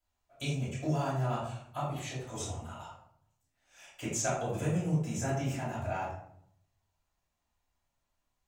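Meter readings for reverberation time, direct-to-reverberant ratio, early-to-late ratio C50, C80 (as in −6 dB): 0.70 s, −10.5 dB, 2.0 dB, 5.5 dB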